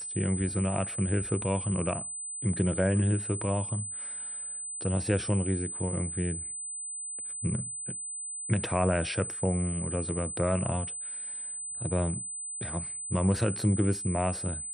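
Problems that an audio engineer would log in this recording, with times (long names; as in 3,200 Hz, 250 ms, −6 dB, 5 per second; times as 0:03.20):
whistle 8,100 Hz −35 dBFS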